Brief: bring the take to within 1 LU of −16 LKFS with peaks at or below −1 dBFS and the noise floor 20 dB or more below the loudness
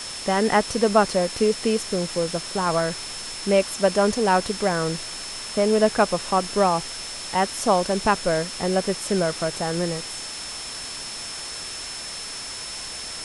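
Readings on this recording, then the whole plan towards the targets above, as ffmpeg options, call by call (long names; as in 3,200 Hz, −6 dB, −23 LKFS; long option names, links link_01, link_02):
interfering tone 5,300 Hz; level of the tone −35 dBFS; background noise floor −34 dBFS; target noise floor −44 dBFS; integrated loudness −23.5 LKFS; sample peak −5.0 dBFS; target loudness −16.0 LKFS
→ -af "bandreject=frequency=5300:width=30"
-af "afftdn=noise_reduction=10:noise_floor=-34"
-af "volume=7.5dB,alimiter=limit=-1dB:level=0:latency=1"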